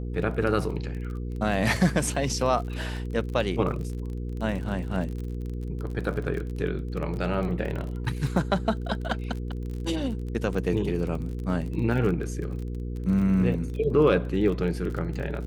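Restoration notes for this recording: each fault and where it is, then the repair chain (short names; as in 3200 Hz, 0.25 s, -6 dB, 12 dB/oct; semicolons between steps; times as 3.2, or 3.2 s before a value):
crackle 31/s -33 dBFS
hum 60 Hz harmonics 8 -32 dBFS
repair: de-click; de-hum 60 Hz, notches 8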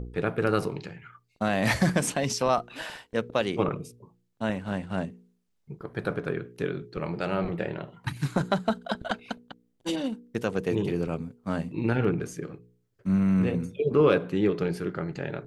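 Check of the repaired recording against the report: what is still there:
none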